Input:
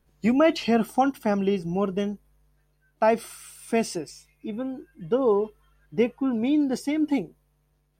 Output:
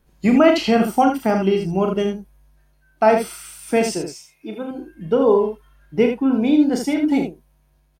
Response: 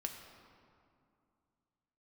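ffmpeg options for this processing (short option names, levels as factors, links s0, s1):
-filter_complex "[0:a]asettb=1/sr,asplit=3[s0][s1][s2];[s0]atrim=end=4.054[s3];[s1]atrim=start=4.05:end=4.71,asetpts=PTS-STARTPTS,afade=t=in:d=0.004:c=qsin,afade=t=out:st=0.656:d=0.004:c=qsin,highpass=f=330:p=1[s4];[s2]atrim=start=4.706[s5];[s3][s4]acrossfade=d=0.004:c1=hsin:c2=qsin[s6];[s6][s5]acrossfade=d=0.004:c1=qsin:c2=hsin,aecho=1:1:37|79:0.473|0.473,volume=1.78"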